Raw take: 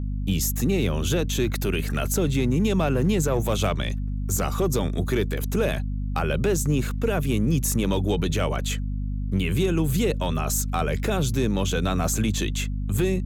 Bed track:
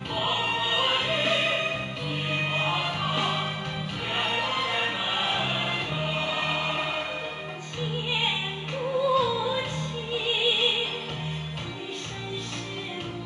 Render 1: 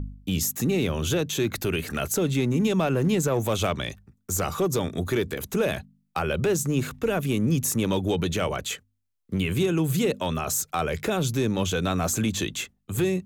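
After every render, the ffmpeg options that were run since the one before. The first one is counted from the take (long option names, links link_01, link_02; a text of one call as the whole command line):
ffmpeg -i in.wav -af "bandreject=frequency=50:width_type=h:width=4,bandreject=frequency=100:width_type=h:width=4,bandreject=frequency=150:width_type=h:width=4,bandreject=frequency=200:width_type=h:width=4,bandreject=frequency=250:width_type=h:width=4" out.wav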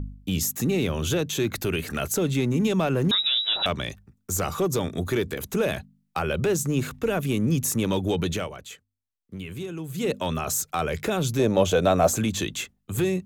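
ffmpeg -i in.wav -filter_complex "[0:a]asettb=1/sr,asplit=3[link_01][link_02][link_03];[link_01]atrim=end=3.114[link_04];[link_02]atrim=start=3.11:end=3.66,asetpts=PTS-STARTPTS,afade=type=in:duration=0.004:curve=qsin,afade=type=out:start_time=0.546:duration=0.004:curve=qsin,lowpass=frequency=3400:width_type=q:width=0.5098,lowpass=frequency=3400:width_type=q:width=0.6013,lowpass=frequency=3400:width_type=q:width=0.9,lowpass=frequency=3400:width_type=q:width=2.563,afreqshift=-4000[link_05];[link_03]atrim=start=3.656[link_06];[link_04][link_05]acrossfade=duration=0.004:curve1=hsin:curve2=qsin[link_07];[link_07][link_06]acrossfade=duration=0.004:curve1=qsin:curve2=hsin,asettb=1/sr,asplit=3[link_08][link_09][link_10];[link_08]atrim=end=11.394[link_11];[link_09]atrim=start=11.39:end=12.16,asetpts=PTS-STARTPTS,afade=type=in:duration=0.004:curve=qsin,afade=type=out:start_time=0.766:duration=0.004:curve=qsin,equalizer=frequency=610:width_type=o:width=0.9:gain=13[link_12];[link_10]atrim=start=12.156[link_13];[link_11][link_12]acrossfade=duration=0.004:curve1=hsin:curve2=qsin[link_14];[link_14][link_13]acrossfade=duration=0.004:curve1=qsin:curve2=hsin,asplit=3[link_15][link_16][link_17];[link_15]atrim=end=8.5,asetpts=PTS-STARTPTS,afade=type=out:start_time=8.33:duration=0.17:silence=0.298538[link_18];[link_16]atrim=start=8.5:end=9.94,asetpts=PTS-STARTPTS,volume=-10.5dB[link_19];[link_17]atrim=start=9.94,asetpts=PTS-STARTPTS,afade=type=in:duration=0.17:silence=0.298538[link_20];[link_18][link_19][link_20]concat=n=3:v=0:a=1" out.wav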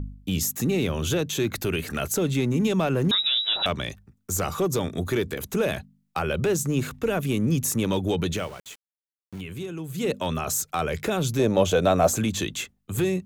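ffmpeg -i in.wav -filter_complex "[0:a]asettb=1/sr,asplit=3[link_01][link_02][link_03];[link_01]atrim=end=8.364[link_04];[link_02]atrim=start=8.36:end=9.41,asetpts=PTS-STARTPTS,afade=type=in:duration=0.004:curve=qsin,afade=type=out:start_time=1.046:duration=0.004:curve=qsin,aeval=exprs='val(0)*gte(abs(val(0)),0.00794)':channel_layout=same[link_05];[link_03]atrim=start=9.406[link_06];[link_04][link_05]acrossfade=duration=0.004:curve1=hsin:curve2=qsin[link_07];[link_07][link_06]acrossfade=duration=0.004:curve1=qsin:curve2=hsin" out.wav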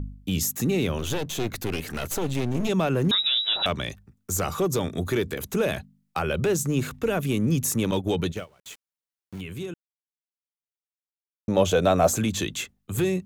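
ffmpeg -i in.wav -filter_complex "[0:a]asettb=1/sr,asplit=3[link_01][link_02][link_03];[link_01]atrim=end=0.984[link_04];[link_02]atrim=start=0.98:end=2.69,asetpts=PTS-STARTPTS,afade=type=in:duration=0.004:curve=qsin,afade=type=out:start_time=1.706:duration=0.004:curve=qsin,aeval=exprs='clip(val(0),-1,0.015)':channel_layout=same[link_05];[link_03]atrim=start=2.686[link_06];[link_04][link_05]acrossfade=duration=0.004:curve1=hsin:curve2=qsin[link_07];[link_07][link_06]acrossfade=duration=0.004:curve1=qsin:curve2=hsin,asettb=1/sr,asplit=3[link_08][link_09][link_10];[link_08]atrim=end=7.914[link_11];[link_09]atrim=start=7.91:end=8.65,asetpts=PTS-STARTPTS,afade=type=in:duration=0.004:curve=qsin,afade=type=out:start_time=0.736:duration=0.004:curve=qsin,agate=range=-19dB:threshold=-28dB:ratio=16:release=100:detection=peak[link_12];[link_10]atrim=start=8.646[link_13];[link_11][link_12]acrossfade=duration=0.004:curve1=hsin:curve2=qsin[link_14];[link_14][link_13]acrossfade=duration=0.004:curve1=qsin:curve2=hsin,asplit=3[link_15][link_16][link_17];[link_15]atrim=end=9.74,asetpts=PTS-STARTPTS,afade=type=out:start_time=9.736:duration=0.004:curve=hsin[link_18];[link_16]atrim=start=9.74:end=11.48,asetpts=PTS-STARTPTS,volume=0[link_19];[link_17]atrim=start=11.48,asetpts=PTS-STARTPTS,afade=type=in:duration=0.004:curve=hsin[link_20];[link_18][link_19][link_20]concat=n=3:v=0:a=1" out.wav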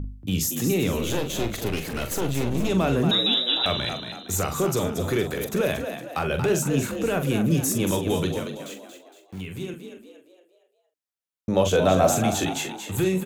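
ffmpeg -i in.wav -filter_complex "[0:a]asplit=2[link_01][link_02];[link_02]adelay=43,volume=-8dB[link_03];[link_01][link_03]amix=inputs=2:normalize=0,asplit=2[link_04][link_05];[link_05]asplit=5[link_06][link_07][link_08][link_09][link_10];[link_06]adelay=231,afreqshift=58,volume=-8dB[link_11];[link_07]adelay=462,afreqshift=116,volume=-15.3dB[link_12];[link_08]adelay=693,afreqshift=174,volume=-22.7dB[link_13];[link_09]adelay=924,afreqshift=232,volume=-30dB[link_14];[link_10]adelay=1155,afreqshift=290,volume=-37.3dB[link_15];[link_11][link_12][link_13][link_14][link_15]amix=inputs=5:normalize=0[link_16];[link_04][link_16]amix=inputs=2:normalize=0" out.wav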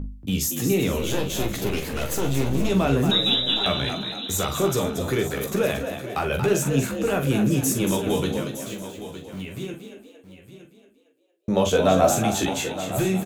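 ffmpeg -i in.wav -filter_complex "[0:a]asplit=2[link_01][link_02];[link_02]adelay=15,volume=-6.5dB[link_03];[link_01][link_03]amix=inputs=2:normalize=0,aecho=1:1:913:0.224" out.wav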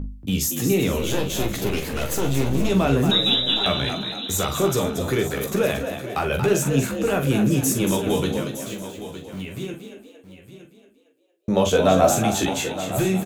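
ffmpeg -i in.wav -af "volume=1.5dB" out.wav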